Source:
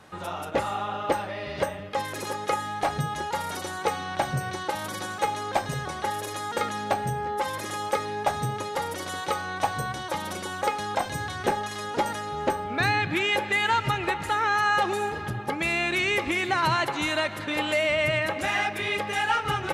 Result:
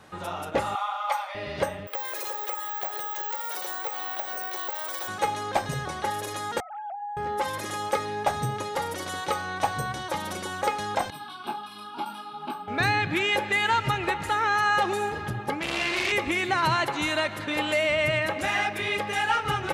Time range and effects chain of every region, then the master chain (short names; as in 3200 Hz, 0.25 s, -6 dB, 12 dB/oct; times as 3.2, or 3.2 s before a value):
0.75–1.35 brick-wall FIR high-pass 530 Hz + comb 0.9 ms, depth 58%
1.87–5.08 HPF 430 Hz 24 dB/oct + compressor 5:1, threshold -31 dBFS + careless resampling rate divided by 2×, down none, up zero stuff
6.6–7.17 sine-wave speech + compressor 12:1, threshold -31 dBFS + band-pass 870 Hz, Q 2.7
11.1–12.68 HPF 190 Hz 24 dB/oct + fixed phaser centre 1900 Hz, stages 6 + detuned doubles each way 25 cents
15.59–16.12 flutter echo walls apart 7.1 m, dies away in 0.97 s + core saturation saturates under 2700 Hz
whole clip: dry